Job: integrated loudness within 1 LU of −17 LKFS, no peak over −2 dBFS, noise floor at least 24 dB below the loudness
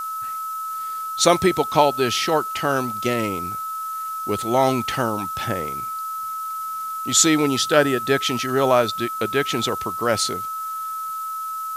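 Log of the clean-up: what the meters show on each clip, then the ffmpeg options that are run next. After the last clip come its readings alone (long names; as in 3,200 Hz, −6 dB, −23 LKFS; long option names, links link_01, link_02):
interfering tone 1,300 Hz; level of the tone −26 dBFS; background noise floor −29 dBFS; target noise floor −46 dBFS; integrated loudness −21.5 LKFS; sample peak −1.5 dBFS; target loudness −17.0 LKFS
→ -af "bandreject=frequency=1300:width=30"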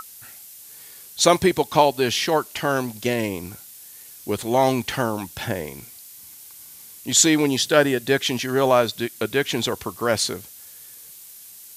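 interfering tone none found; background noise floor −44 dBFS; target noise floor −45 dBFS
→ -af "afftdn=noise_reduction=6:noise_floor=-44"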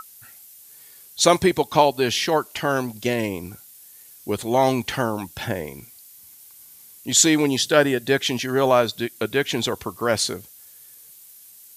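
background noise floor −47 dBFS; integrated loudness −21.0 LKFS; sample peak −1.5 dBFS; target loudness −17.0 LKFS
→ -af "volume=4dB,alimiter=limit=-2dB:level=0:latency=1"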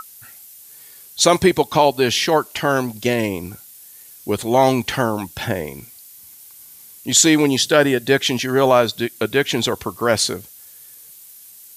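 integrated loudness −17.5 LKFS; sample peak −2.0 dBFS; background noise floor −43 dBFS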